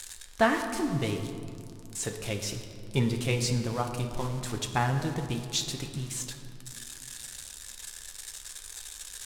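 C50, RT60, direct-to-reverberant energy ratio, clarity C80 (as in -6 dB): 7.0 dB, 2.6 s, 3.0 dB, 8.0 dB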